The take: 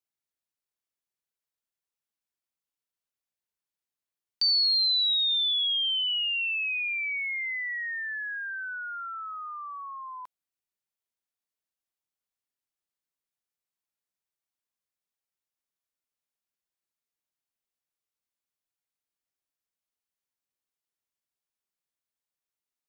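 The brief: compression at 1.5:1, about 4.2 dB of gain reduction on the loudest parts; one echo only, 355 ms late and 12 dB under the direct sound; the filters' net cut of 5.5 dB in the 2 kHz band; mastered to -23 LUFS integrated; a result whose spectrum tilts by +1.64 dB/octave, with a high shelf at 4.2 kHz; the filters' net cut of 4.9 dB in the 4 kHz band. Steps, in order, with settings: peaking EQ 2 kHz -6.5 dB; peaking EQ 4 kHz -8 dB; treble shelf 4.2 kHz +8 dB; compression 1.5:1, threshold -38 dBFS; delay 355 ms -12 dB; trim +10.5 dB

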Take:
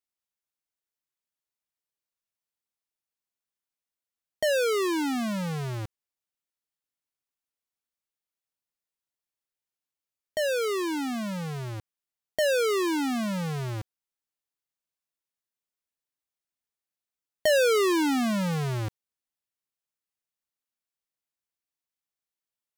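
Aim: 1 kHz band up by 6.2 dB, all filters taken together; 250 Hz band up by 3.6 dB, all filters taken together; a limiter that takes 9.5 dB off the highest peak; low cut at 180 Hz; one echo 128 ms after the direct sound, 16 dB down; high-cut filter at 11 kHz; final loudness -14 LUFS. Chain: high-pass 180 Hz; low-pass 11 kHz; peaking EQ 250 Hz +5.5 dB; peaking EQ 1 kHz +7.5 dB; peak limiter -21 dBFS; delay 128 ms -16 dB; trim +14.5 dB

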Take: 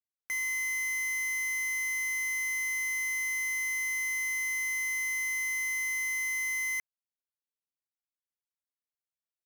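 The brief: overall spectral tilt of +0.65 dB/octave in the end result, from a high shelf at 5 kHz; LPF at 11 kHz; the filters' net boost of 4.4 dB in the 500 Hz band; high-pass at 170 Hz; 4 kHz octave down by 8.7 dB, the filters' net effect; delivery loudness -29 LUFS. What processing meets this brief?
high-pass 170 Hz; low-pass 11 kHz; peaking EQ 500 Hz +6 dB; peaking EQ 4 kHz -9 dB; treble shelf 5 kHz -7 dB; trim +4 dB

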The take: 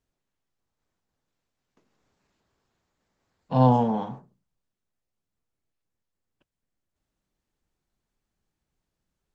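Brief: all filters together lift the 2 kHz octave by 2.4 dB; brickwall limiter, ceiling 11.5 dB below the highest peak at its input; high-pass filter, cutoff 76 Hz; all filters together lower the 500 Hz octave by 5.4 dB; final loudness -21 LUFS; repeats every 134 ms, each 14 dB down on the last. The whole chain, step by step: high-pass 76 Hz; peaking EQ 500 Hz -6.5 dB; peaking EQ 2 kHz +4 dB; peak limiter -21.5 dBFS; feedback delay 134 ms, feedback 20%, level -14 dB; trim +10.5 dB

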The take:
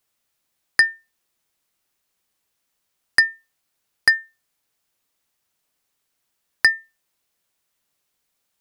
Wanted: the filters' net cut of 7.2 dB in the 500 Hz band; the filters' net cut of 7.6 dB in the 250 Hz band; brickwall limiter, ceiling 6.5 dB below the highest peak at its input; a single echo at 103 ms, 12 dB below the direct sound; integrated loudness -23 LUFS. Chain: peaking EQ 250 Hz -8 dB; peaking EQ 500 Hz -7.5 dB; peak limiter -7.5 dBFS; delay 103 ms -12 dB; trim +1 dB

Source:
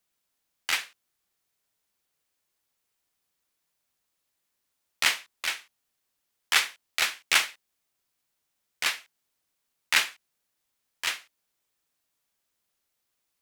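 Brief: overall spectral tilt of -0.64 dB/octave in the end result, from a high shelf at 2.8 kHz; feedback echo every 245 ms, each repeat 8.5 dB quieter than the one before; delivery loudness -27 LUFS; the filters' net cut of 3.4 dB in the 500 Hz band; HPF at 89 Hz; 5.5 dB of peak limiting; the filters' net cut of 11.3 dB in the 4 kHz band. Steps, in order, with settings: high-pass 89 Hz; peaking EQ 500 Hz -4 dB; treble shelf 2.8 kHz -8.5 dB; peaking EQ 4 kHz -8.5 dB; peak limiter -17.5 dBFS; feedback delay 245 ms, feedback 38%, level -8.5 dB; trim +9 dB

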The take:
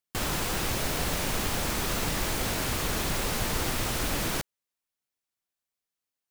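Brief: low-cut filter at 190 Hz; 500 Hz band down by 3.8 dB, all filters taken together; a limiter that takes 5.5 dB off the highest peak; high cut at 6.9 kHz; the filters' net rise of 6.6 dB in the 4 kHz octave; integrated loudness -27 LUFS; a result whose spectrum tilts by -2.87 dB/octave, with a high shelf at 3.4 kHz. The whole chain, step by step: high-pass 190 Hz; low-pass 6.9 kHz; peaking EQ 500 Hz -5 dB; treble shelf 3.4 kHz +4 dB; peaking EQ 4 kHz +6 dB; trim +2.5 dB; peak limiter -19.5 dBFS

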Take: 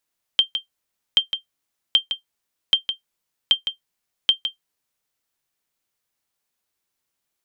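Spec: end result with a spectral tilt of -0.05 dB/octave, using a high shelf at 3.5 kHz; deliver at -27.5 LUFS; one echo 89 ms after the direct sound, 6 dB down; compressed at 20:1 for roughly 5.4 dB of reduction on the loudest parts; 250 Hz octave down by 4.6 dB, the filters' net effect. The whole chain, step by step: peaking EQ 250 Hz -6.5 dB; treble shelf 3.5 kHz -8.5 dB; compression 20:1, threshold -22 dBFS; delay 89 ms -6 dB; trim +3 dB

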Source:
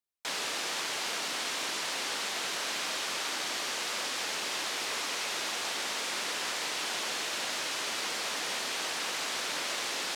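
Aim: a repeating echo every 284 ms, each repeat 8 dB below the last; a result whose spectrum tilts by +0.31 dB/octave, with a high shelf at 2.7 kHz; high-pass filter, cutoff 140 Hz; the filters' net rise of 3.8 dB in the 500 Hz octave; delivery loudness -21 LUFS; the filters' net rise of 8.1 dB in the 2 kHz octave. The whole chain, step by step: high-pass 140 Hz; peaking EQ 500 Hz +4 dB; peaking EQ 2 kHz +6 dB; treble shelf 2.7 kHz +8.5 dB; feedback delay 284 ms, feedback 40%, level -8 dB; trim +3 dB

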